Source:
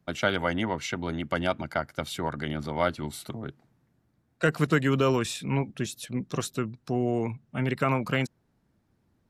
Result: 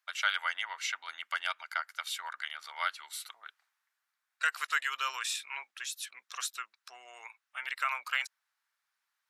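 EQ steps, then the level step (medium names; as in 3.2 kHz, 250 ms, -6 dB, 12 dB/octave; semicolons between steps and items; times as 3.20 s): high-pass 1.2 kHz 24 dB/octave; 0.0 dB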